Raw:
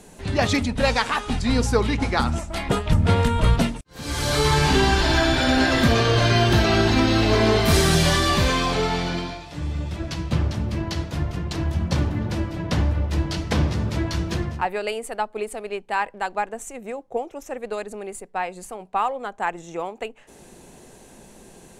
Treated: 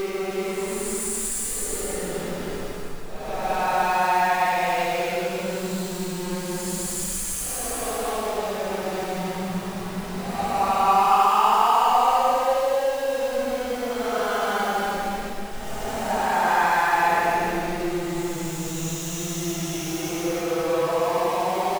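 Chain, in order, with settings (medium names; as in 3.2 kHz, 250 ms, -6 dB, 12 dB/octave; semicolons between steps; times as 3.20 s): jump at every zero crossing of -26 dBFS; Paulstretch 12×, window 0.10 s, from 18.06 s; delay 311 ms -5.5 dB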